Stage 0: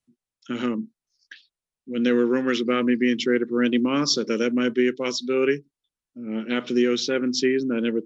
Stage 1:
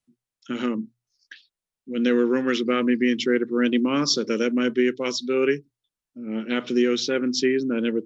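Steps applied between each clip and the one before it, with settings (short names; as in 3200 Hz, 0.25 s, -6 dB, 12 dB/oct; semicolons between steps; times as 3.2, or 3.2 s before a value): notches 60/120 Hz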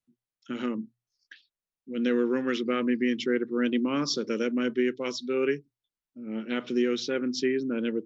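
high shelf 5000 Hz -5.5 dB; gain -5 dB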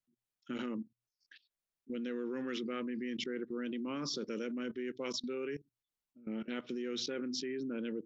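level quantiser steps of 19 dB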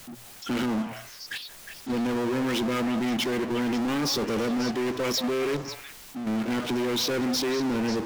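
power-law curve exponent 0.35; delay with a stepping band-pass 0.18 s, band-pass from 780 Hz, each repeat 1.4 oct, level -4 dB; gain +4.5 dB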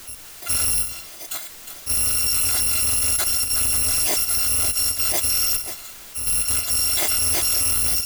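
FFT order left unsorted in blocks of 256 samples; gain +6 dB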